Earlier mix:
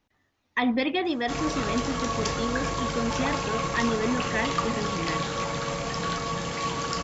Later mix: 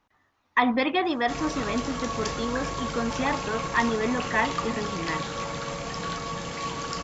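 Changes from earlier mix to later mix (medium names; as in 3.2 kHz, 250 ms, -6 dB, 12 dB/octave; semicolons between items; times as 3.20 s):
speech: add peaking EQ 1.1 kHz +10 dB 1.3 oct; reverb: off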